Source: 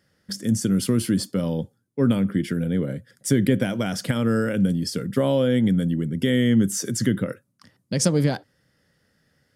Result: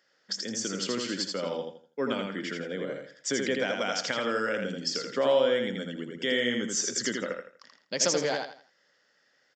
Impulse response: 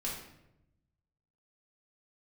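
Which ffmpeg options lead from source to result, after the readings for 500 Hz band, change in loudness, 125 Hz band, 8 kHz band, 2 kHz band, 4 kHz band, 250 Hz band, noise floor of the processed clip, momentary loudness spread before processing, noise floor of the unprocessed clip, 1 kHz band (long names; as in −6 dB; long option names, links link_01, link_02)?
−2.5 dB, −6.5 dB, −21.0 dB, −1.0 dB, +1.5 dB, +1.5 dB, −13.5 dB, −69 dBFS, 10 LU, −68 dBFS, +1.0 dB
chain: -af "highpass=560,aecho=1:1:82|164|246|328:0.631|0.189|0.0568|0.017,aresample=16000,aresample=44100"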